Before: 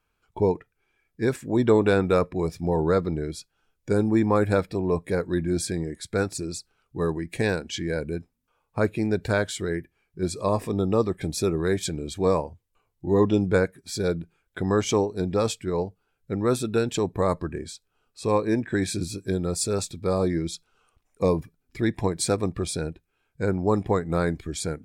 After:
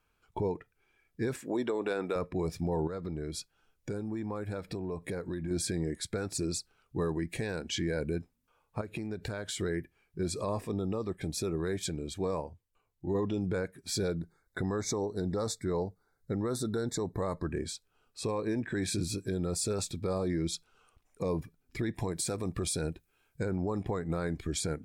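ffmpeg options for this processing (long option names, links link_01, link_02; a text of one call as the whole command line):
ffmpeg -i in.wav -filter_complex "[0:a]asettb=1/sr,asplit=3[link_01][link_02][link_03];[link_01]atrim=end=1.414[link_04];[link_02]atrim=start=1.41:end=2.16,asetpts=PTS-STARTPTS,afade=type=in:duration=0.004:curve=qsin,afade=type=out:start_time=0.746:duration=0.004:curve=qsin,highpass=310[link_05];[link_03]atrim=start=2.156[link_06];[link_04][link_05]acrossfade=duration=0.004:curve1=hsin:curve2=qsin[link_07];[link_07][link_06]acrossfade=duration=0.004:curve1=qsin:curve2=hsin,asettb=1/sr,asplit=3[link_08][link_09][link_10];[link_08]atrim=end=2.874[link_11];[link_09]atrim=start=2.87:end=5.51,asetpts=PTS-STARTPTS,afade=type=in:duration=0.004:curve=qsin,afade=type=out:start_time=2.636:duration=0.004:curve=qsin,acompressor=threshold=-32dB:ratio=10:attack=3.2:release=140:knee=1:detection=peak[link_12];[link_10]atrim=start=5.506[link_13];[link_11][link_12]acrossfade=duration=0.004:curve1=hsin:curve2=qsin[link_14];[link_14][link_13]acrossfade=duration=0.004:curve1=qsin:curve2=hsin,asettb=1/sr,asplit=3[link_15][link_16][link_17];[link_15]atrim=end=8.814[link_18];[link_16]atrim=start=8.81:end=9.58,asetpts=PTS-STARTPTS,afade=type=in:duration=0.004:curve=qsin,afade=type=out:start_time=0.766:duration=0.004:curve=qsin,acompressor=threshold=-32dB:ratio=16:attack=3.2:release=140:knee=1:detection=peak[link_19];[link_17]atrim=start=9.576[link_20];[link_18][link_19]acrossfade=duration=0.004:curve1=hsin:curve2=qsin[link_21];[link_21][link_20]acrossfade=duration=0.004:curve1=qsin:curve2=hsin,asettb=1/sr,asplit=3[link_22][link_23][link_24];[link_22]atrim=end=14.154[link_25];[link_23]atrim=start=14.15:end=17.52,asetpts=PTS-STARTPTS,afade=type=in:duration=0.004:curve=qsin,afade=type=out:start_time=3.366:duration=0.004:curve=qsin,asuperstop=centerf=2800:order=20:qfactor=2.2[link_26];[link_24]atrim=start=17.516[link_27];[link_25][link_26]acrossfade=duration=0.004:curve1=hsin:curve2=qsin[link_28];[link_28][link_27]acrossfade=duration=0.004:curve1=qsin:curve2=hsin,asettb=1/sr,asplit=3[link_29][link_30][link_31];[link_29]atrim=end=21.954[link_32];[link_30]atrim=start=21.95:end=23.45,asetpts=PTS-STARTPTS,afade=type=in:duration=0.004:curve=qsin,afade=type=out:start_time=1.496:duration=0.004:curve=qsin,highshelf=frequency=6700:gain=9.5[link_33];[link_31]atrim=start=23.446[link_34];[link_32][link_33]acrossfade=duration=0.004:curve1=hsin:curve2=qsin[link_35];[link_35][link_34]acrossfade=duration=0.004:curve1=qsin:curve2=hsin,asplit=3[link_36][link_37][link_38];[link_36]atrim=end=10.612[link_39];[link_37]atrim=start=10.608:end=13.152,asetpts=PTS-STARTPTS,volume=-5.5dB[link_40];[link_38]atrim=start=13.148[link_41];[link_39][link_40]acrossfade=duration=0.004:curve1=hsin:curve2=hsin[link_42];[link_42][link_41]acrossfade=duration=0.004:curve1=hsin:curve2=hsin,acompressor=threshold=-27dB:ratio=2.5,alimiter=limit=-23.5dB:level=0:latency=1:release=25" out.wav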